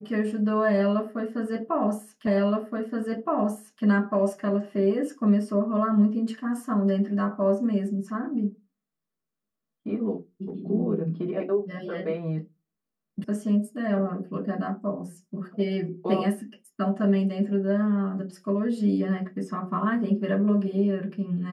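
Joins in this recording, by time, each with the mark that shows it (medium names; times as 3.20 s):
2.27 s: repeat of the last 1.57 s
13.24 s: sound stops dead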